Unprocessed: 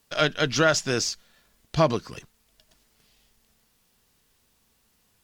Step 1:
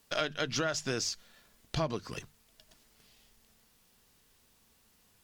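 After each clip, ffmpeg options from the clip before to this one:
ffmpeg -i in.wav -af "acompressor=threshold=-29dB:ratio=6,bandreject=frequency=50:width_type=h:width=6,bandreject=frequency=100:width_type=h:width=6,bandreject=frequency=150:width_type=h:width=6" out.wav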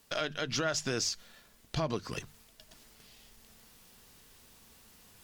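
ffmpeg -i in.wav -af "alimiter=limit=-23.5dB:level=0:latency=1:release=96,areverse,acompressor=mode=upward:threshold=-53dB:ratio=2.5,areverse,volume=2.5dB" out.wav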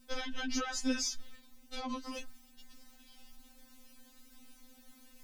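ffmpeg -i in.wav -af "lowshelf=frequency=190:gain=11.5,aeval=exprs='val(0)+0.00355*(sin(2*PI*60*n/s)+sin(2*PI*2*60*n/s)/2+sin(2*PI*3*60*n/s)/3+sin(2*PI*4*60*n/s)/4+sin(2*PI*5*60*n/s)/5)':channel_layout=same,afftfilt=real='re*3.46*eq(mod(b,12),0)':imag='im*3.46*eq(mod(b,12),0)':win_size=2048:overlap=0.75,volume=-1dB" out.wav

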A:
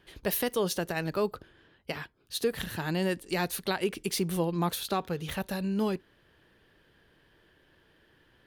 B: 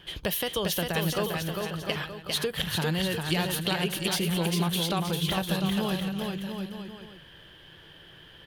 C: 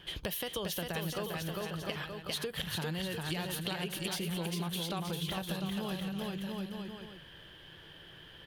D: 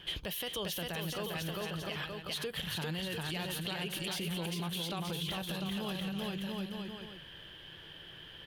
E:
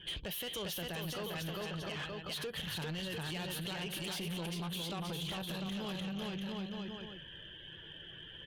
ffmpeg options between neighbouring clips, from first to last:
ffmpeg -i in.wav -af "equalizer=frequency=160:width_type=o:width=0.33:gain=6,equalizer=frequency=250:width_type=o:width=0.33:gain=-7,equalizer=frequency=400:width_type=o:width=0.33:gain=-4,equalizer=frequency=3150:width_type=o:width=0.33:gain=11,acompressor=threshold=-36dB:ratio=4,aecho=1:1:400|700|925|1094|1220:0.631|0.398|0.251|0.158|0.1,volume=8.5dB" out.wav
ffmpeg -i in.wav -af "acompressor=threshold=-33dB:ratio=3,volume=-2dB" out.wav
ffmpeg -i in.wav -af "alimiter=level_in=5.5dB:limit=-24dB:level=0:latency=1:release=13,volume=-5.5dB,equalizer=frequency=2900:width_type=o:width=0.86:gain=4" out.wav
ffmpeg -i in.wav -af "afftdn=noise_reduction=17:noise_floor=-56,asoftclip=type=tanh:threshold=-36dB,volume=1dB" out.wav

